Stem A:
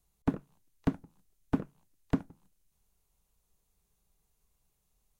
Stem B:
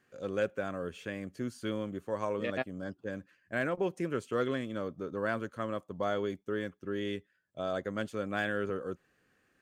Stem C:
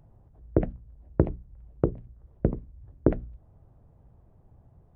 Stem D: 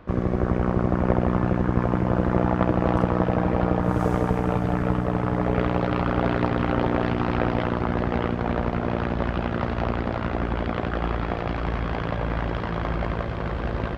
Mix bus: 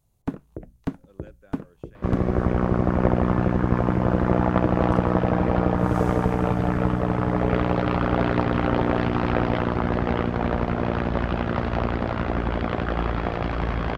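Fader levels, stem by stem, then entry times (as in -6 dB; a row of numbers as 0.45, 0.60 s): +1.0, -19.0, -14.0, +1.0 dB; 0.00, 0.85, 0.00, 1.95 s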